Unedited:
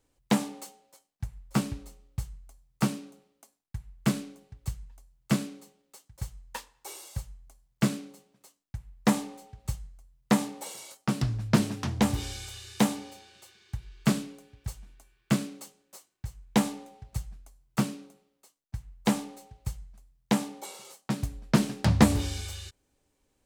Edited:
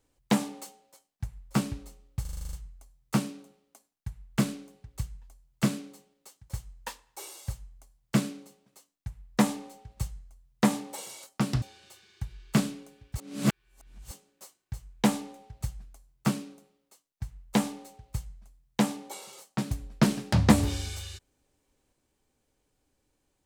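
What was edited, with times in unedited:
2.21 s: stutter 0.04 s, 9 plays
11.30–13.14 s: delete
14.70–15.63 s: reverse

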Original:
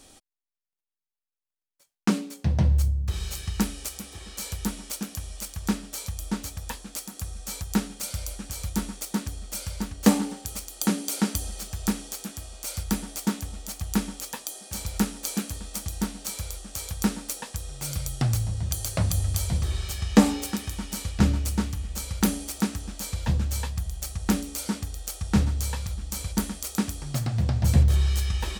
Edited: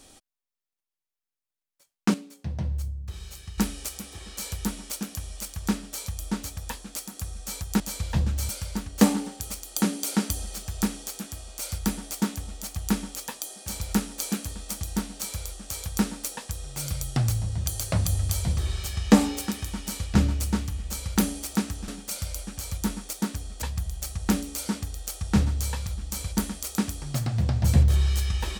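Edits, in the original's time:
2.14–3.58 s: gain -8.5 dB
7.80–9.54 s: swap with 22.93–23.62 s

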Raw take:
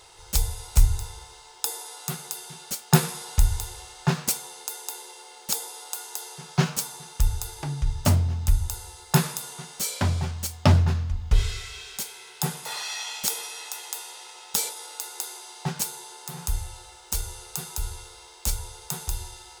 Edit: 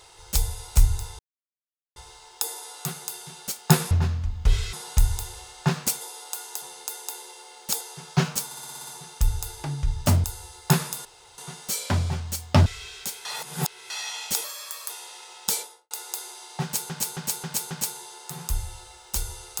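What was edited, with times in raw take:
1.19 s: insert silence 0.77 s
5.61–6.22 s: move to 4.42 s
6.86 s: stutter 0.06 s, 8 plays
8.23–8.68 s: delete
9.49 s: insert room tone 0.33 s
10.77–11.59 s: move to 3.14 s
12.18–12.83 s: reverse
13.37–13.96 s: speed 129%
14.60–14.97 s: studio fade out
15.69–15.96 s: loop, 5 plays

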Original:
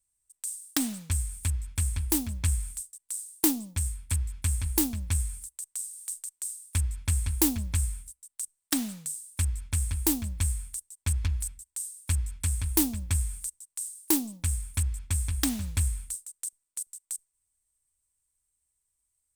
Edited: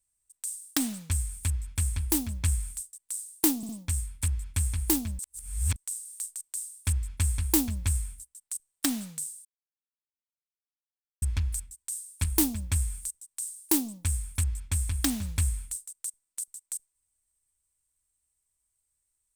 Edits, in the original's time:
3.57 s: stutter 0.06 s, 3 plays
5.07–5.64 s: reverse
9.33–11.10 s: mute
12.12–12.63 s: delete

